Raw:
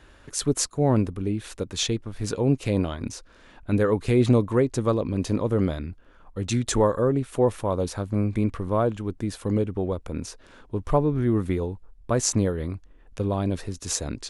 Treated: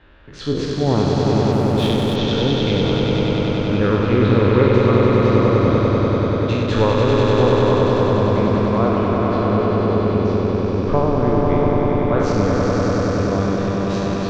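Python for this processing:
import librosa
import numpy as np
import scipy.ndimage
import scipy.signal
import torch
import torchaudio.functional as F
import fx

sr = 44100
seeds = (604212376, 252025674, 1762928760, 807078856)

p1 = fx.spec_trails(x, sr, decay_s=1.31)
p2 = scipy.signal.sosfilt(scipy.signal.butter(4, 3700.0, 'lowpass', fs=sr, output='sos'), p1)
p3 = p2 + fx.echo_swell(p2, sr, ms=97, loudest=5, wet_db=-4.5, dry=0)
y = fx.backlash(p3, sr, play_db=-26.5, at=(1.52, 2.16))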